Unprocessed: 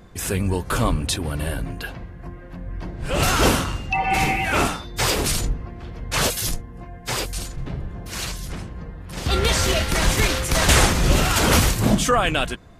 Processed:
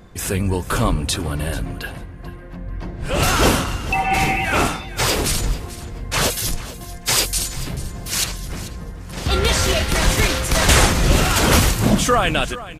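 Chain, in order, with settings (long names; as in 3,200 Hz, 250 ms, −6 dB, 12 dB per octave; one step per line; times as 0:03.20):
0:06.90–0:08.24: high-shelf EQ 2,700 Hz +11 dB
repeating echo 439 ms, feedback 15%, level −16 dB
level +2 dB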